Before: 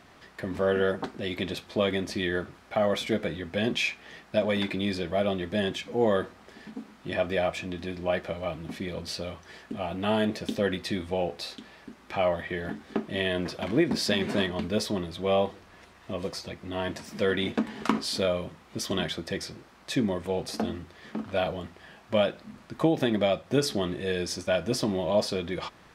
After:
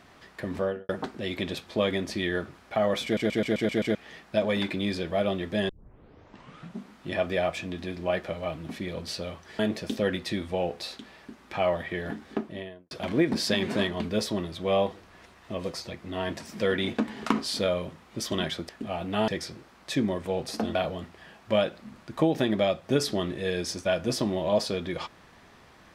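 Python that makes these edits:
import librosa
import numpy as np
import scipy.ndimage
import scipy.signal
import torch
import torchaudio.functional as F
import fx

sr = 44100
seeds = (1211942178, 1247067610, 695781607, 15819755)

y = fx.studio_fade_out(x, sr, start_s=0.54, length_s=0.35)
y = fx.studio_fade_out(y, sr, start_s=12.83, length_s=0.67)
y = fx.edit(y, sr, fx.stutter_over(start_s=3.04, slice_s=0.13, count=7),
    fx.tape_start(start_s=5.69, length_s=1.25),
    fx.move(start_s=9.59, length_s=0.59, to_s=19.28),
    fx.cut(start_s=20.75, length_s=0.62), tone=tone)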